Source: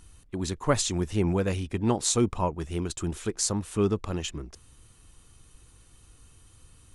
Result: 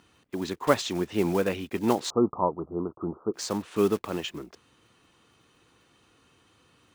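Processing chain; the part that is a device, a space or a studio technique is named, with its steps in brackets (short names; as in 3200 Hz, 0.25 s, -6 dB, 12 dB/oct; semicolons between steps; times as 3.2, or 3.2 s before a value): early digital voice recorder (BPF 230–3600 Hz; block floating point 5-bit); 2.1–3.34 steep low-pass 1300 Hz 96 dB/oct; gain +3 dB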